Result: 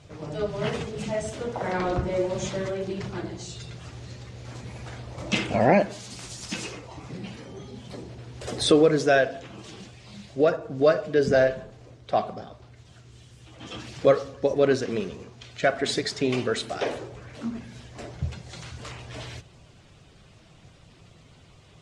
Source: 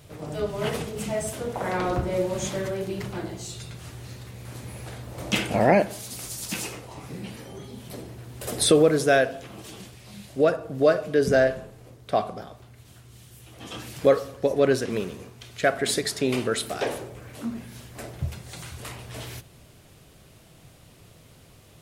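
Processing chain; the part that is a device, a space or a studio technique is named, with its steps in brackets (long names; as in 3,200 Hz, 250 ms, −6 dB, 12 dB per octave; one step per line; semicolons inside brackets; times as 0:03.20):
clip after many re-uploads (low-pass filter 7,100 Hz 24 dB per octave; spectral magnitudes quantised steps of 15 dB)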